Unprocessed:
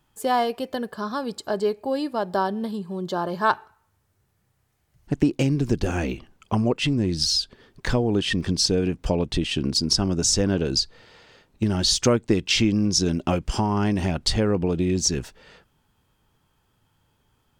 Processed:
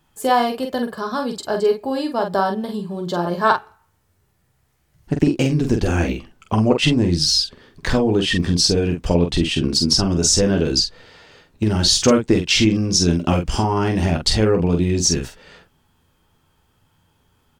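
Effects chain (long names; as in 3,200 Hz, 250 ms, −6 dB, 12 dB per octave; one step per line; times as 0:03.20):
0:06.70–0:07.19: transient designer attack +8 dB, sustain +2 dB
on a send: ambience of single reflections 12 ms −8.5 dB, 46 ms −5.5 dB
on the sum: level +3.5 dB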